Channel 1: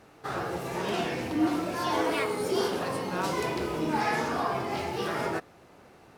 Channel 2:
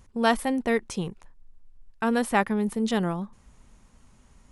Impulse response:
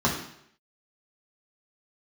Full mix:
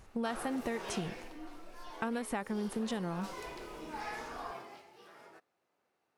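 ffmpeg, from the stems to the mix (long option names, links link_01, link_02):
-filter_complex "[0:a]highpass=frequency=490:poles=1,volume=1dB,afade=type=out:start_time=0.78:duration=0.68:silence=0.223872,afade=type=in:start_time=2.42:duration=0.56:silence=0.421697,afade=type=out:start_time=4.55:duration=0.28:silence=0.266073[link_01];[1:a]acompressor=threshold=-27dB:ratio=3,volume=-2.5dB[link_02];[link_01][link_02]amix=inputs=2:normalize=0,acompressor=threshold=-32dB:ratio=4"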